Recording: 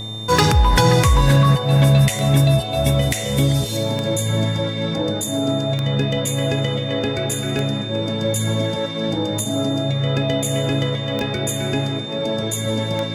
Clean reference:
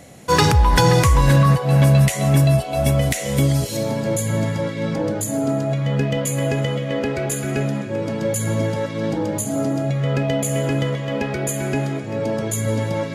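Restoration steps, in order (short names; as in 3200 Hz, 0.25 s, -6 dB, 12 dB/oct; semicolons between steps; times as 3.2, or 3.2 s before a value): de-click; de-hum 108.7 Hz, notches 11; notch 3600 Hz, Q 30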